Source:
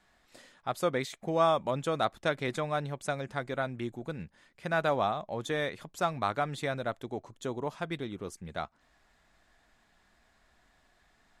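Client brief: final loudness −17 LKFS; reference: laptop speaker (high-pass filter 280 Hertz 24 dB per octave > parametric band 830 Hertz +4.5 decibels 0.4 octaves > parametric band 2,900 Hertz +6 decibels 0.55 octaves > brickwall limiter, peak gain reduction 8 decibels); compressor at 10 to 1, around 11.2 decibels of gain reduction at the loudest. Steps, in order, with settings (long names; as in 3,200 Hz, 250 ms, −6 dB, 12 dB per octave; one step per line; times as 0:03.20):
downward compressor 10 to 1, threshold −32 dBFS
high-pass filter 280 Hz 24 dB per octave
parametric band 830 Hz +4.5 dB 0.4 octaves
parametric band 2,900 Hz +6 dB 0.55 octaves
level +23.5 dB
brickwall limiter −3.5 dBFS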